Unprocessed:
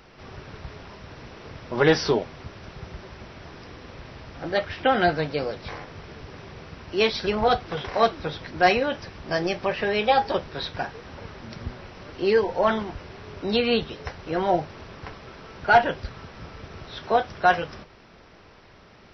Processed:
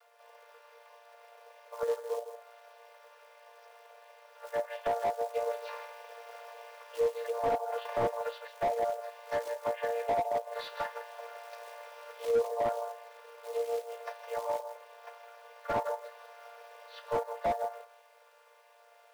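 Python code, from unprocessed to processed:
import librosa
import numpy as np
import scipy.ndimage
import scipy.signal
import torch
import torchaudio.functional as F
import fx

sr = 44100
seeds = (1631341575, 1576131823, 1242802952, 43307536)

y = fx.chord_vocoder(x, sr, chord='major triad', root=58)
y = fx.env_lowpass_down(y, sr, base_hz=770.0, full_db=-20.0)
y = fx.quant_companded(y, sr, bits=6)
y = fx.rider(y, sr, range_db=4, speed_s=0.5)
y = fx.brickwall_highpass(y, sr, low_hz=430.0)
y = y + 10.0 ** (-11.5 / 20.0) * np.pad(y, (int(160 * sr / 1000.0), 0))[:len(y)]
y = fx.slew_limit(y, sr, full_power_hz=51.0)
y = F.gain(torch.from_numpy(y), -3.0).numpy()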